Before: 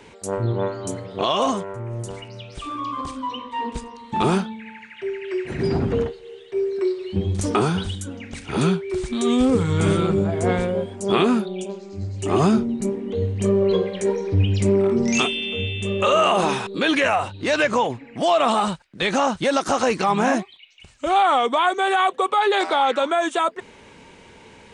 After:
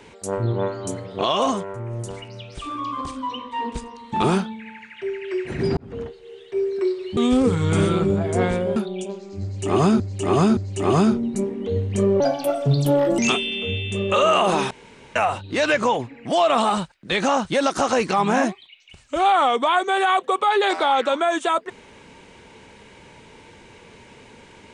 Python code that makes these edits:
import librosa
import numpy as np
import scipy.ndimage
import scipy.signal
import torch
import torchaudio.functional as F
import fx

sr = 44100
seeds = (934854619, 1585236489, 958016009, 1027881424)

y = fx.edit(x, sr, fx.fade_in_span(start_s=5.77, length_s=0.66),
    fx.cut(start_s=7.17, length_s=2.08),
    fx.cut(start_s=10.84, length_s=0.52),
    fx.repeat(start_s=12.03, length_s=0.57, count=3),
    fx.speed_span(start_s=13.66, length_s=1.43, speed=1.45),
    fx.room_tone_fill(start_s=16.61, length_s=0.45), tone=tone)